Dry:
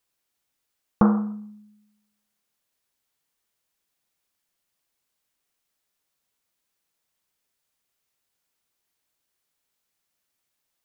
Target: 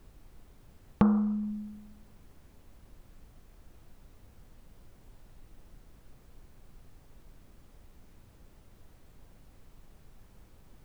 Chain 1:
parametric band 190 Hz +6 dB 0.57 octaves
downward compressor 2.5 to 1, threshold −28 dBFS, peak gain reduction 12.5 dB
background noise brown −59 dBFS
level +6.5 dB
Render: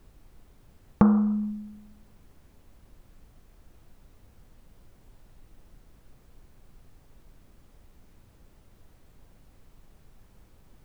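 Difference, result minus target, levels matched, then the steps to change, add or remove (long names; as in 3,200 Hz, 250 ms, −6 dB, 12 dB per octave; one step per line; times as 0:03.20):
downward compressor: peak gain reduction −4.5 dB
change: downward compressor 2.5 to 1, threshold −35.5 dBFS, peak gain reduction 17 dB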